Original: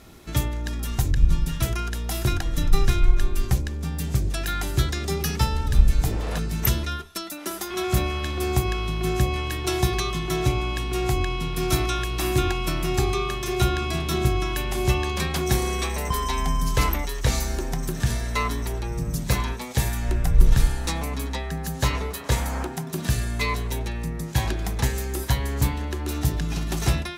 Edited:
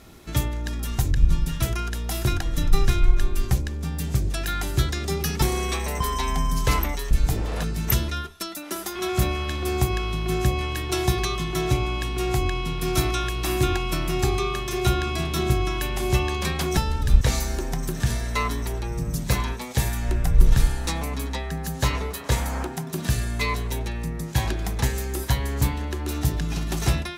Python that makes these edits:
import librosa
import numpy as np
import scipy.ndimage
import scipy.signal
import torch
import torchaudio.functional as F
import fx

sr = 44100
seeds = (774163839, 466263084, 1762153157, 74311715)

y = fx.edit(x, sr, fx.swap(start_s=5.42, length_s=0.44, other_s=15.52, other_length_s=1.69), tone=tone)